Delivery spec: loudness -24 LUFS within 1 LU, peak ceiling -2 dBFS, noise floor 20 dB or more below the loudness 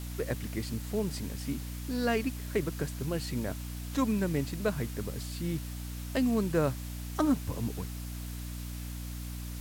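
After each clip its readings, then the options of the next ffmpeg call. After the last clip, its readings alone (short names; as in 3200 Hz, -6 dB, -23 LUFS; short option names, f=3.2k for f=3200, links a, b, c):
hum 60 Hz; harmonics up to 300 Hz; hum level -37 dBFS; noise floor -39 dBFS; noise floor target -54 dBFS; loudness -33.5 LUFS; peak -14.5 dBFS; loudness target -24.0 LUFS
-> -af "bandreject=f=60:t=h:w=6,bandreject=f=120:t=h:w=6,bandreject=f=180:t=h:w=6,bandreject=f=240:t=h:w=6,bandreject=f=300:t=h:w=6"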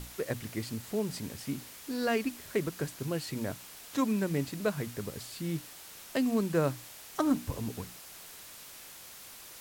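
hum none; noise floor -49 dBFS; noise floor target -54 dBFS
-> -af "afftdn=nr=6:nf=-49"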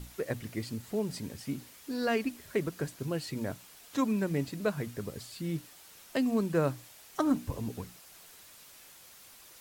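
noise floor -54 dBFS; loudness -34.0 LUFS; peak -16.0 dBFS; loudness target -24.0 LUFS
-> -af "volume=10dB"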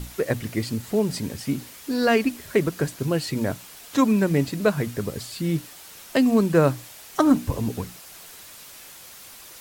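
loudness -24.0 LUFS; peak -6.0 dBFS; noise floor -44 dBFS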